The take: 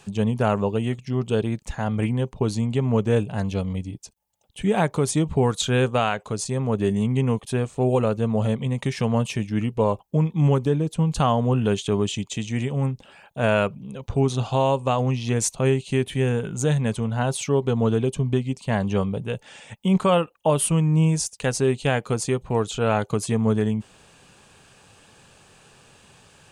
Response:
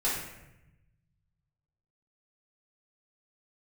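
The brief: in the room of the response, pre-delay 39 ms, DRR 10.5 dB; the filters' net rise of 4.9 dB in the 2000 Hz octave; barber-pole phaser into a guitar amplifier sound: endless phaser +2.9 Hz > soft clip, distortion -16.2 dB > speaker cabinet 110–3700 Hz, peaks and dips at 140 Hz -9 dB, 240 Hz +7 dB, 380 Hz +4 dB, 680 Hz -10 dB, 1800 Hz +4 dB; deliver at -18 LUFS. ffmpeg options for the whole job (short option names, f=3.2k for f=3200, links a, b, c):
-filter_complex "[0:a]equalizer=f=2k:t=o:g=4.5,asplit=2[a][b];[1:a]atrim=start_sample=2205,adelay=39[c];[b][c]afir=irnorm=-1:irlink=0,volume=-19.5dB[d];[a][d]amix=inputs=2:normalize=0,asplit=2[e][f];[f]afreqshift=2.9[g];[e][g]amix=inputs=2:normalize=1,asoftclip=threshold=-17.5dB,highpass=110,equalizer=f=140:t=q:w=4:g=-9,equalizer=f=240:t=q:w=4:g=7,equalizer=f=380:t=q:w=4:g=4,equalizer=f=680:t=q:w=4:g=-10,equalizer=f=1.8k:t=q:w=4:g=4,lowpass=f=3.7k:w=0.5412,lowpass=f=3.7k:w=1.3066,volume=9dB"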